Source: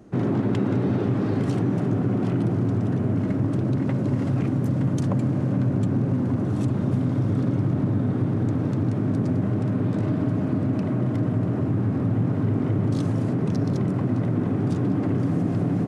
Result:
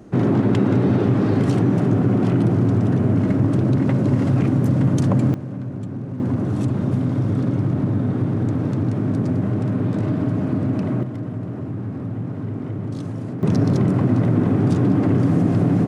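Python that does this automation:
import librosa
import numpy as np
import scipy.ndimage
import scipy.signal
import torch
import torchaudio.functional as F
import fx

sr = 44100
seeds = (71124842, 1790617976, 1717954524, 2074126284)

y = fx.gain(x, sr, db=fx.steps((0.0, 5.5), (5.34, -6.5), (6.2, 2.5), (11.03, -4.5), (13.43, 6.0)))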